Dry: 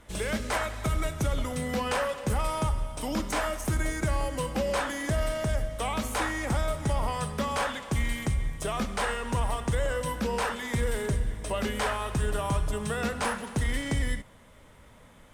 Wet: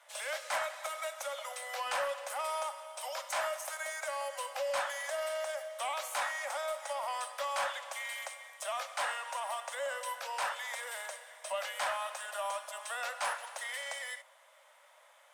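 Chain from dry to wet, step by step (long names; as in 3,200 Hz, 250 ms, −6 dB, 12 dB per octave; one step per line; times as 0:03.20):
Butterworth high-pass 540 Hz 96 dB per octave
in parallel at −6.5 dB: soft clipping −27 dBFS, distortion −15 dB
on the sum: level −6.5 dB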